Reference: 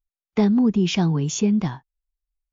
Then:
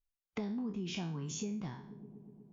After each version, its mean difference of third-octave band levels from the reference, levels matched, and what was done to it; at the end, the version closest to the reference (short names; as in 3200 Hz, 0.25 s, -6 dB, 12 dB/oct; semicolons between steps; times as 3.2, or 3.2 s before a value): 5.0 dB: spectral trails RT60 0.41 s; dark delay 0.122 s, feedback 80%, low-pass 470 Hz, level -23 dB; compressor 3:1, threshold -35 dBFS, peak gain reduction 15.5 dB; gain -6 dB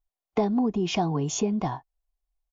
3.0 dB: EQ curve 380 Hz 0 dB, 560 Hz +8 dB, 850 Hz +9 dB, 1500 Hz -3 dB; compressor 3:1, threshold -22 dBFS, peak gain reduction 7 dB; comb 2.8 ms, depth 38%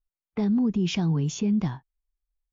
1.5 dB: low-pass opened by the level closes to 1900 Hz, open at -16 dBFS; low shelf 210 Hz +6 dB; limiter -13 dBFS, peak gain reduction 6 dB; gain -5 dB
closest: third